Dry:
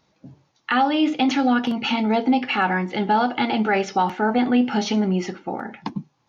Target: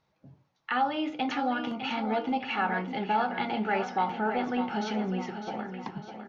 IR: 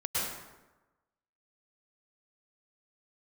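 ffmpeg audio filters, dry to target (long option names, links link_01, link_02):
-filter_complex "[0:a]lowpass=frequency=2100:poles=1,equalizer=frequency=270:width=1.2:gain=-7,bandreject=frequency=60:width_type=h:width=4,bandreject=frequency=120:width_type=h:width=4,bandreject=frequency=180:width_type=h:width=4,bandreject=frequency=240:width_type=h:width=4,bandreject=frequency=300:width_type=h:width=4,bandreject=frequency=360:width_type=h:width=4,bandreject=frequency=420:width_type=h:width=4,bandreject=frequency=480:width_type=h:width=4,bandreject=frequency=540:width_type=h:width=4,bandreject=frequency=600:width_type=h:width=4,bandreject=frequency=660:width_type=h:width=4,bandreject=frequency=720:width_type=h:width=4,bandreject=frequency=780:width_type=h:width=4,bandreject=frequency=840:width_type=h:width=4,bandreject=frequency=900:width_type=h:width=4,bandreject=frequency=960:width_type=h:width=4,bandreject=frequency=1020:width_type=h:width=4,bandreject=frequency=1080:width_type=h:width=4,bandreject=frequency=1140:width_type=h:width=4,bandreject=frequency=1200:width_type=h:width=4,bandreject=frequency=1260:width_type=h:width=4,bandreject=frequency=1320:width_type=h:width=4,bandreject=frequency=1380:width_type=h:width=4,bandreject=frequency=1440:width_type=h:width=4,bandreject=frequency=1500:width_type=h:width=4,asplit=2[link_01][link_02];[link_02]aecho=0:1:604|1208|1812|2416|3020:0.355|0.17|0.0817|0.0392|0.0188[link_03];[link_01][link_03]amix=inputs=2:normalize=0,volume=-5.5dB"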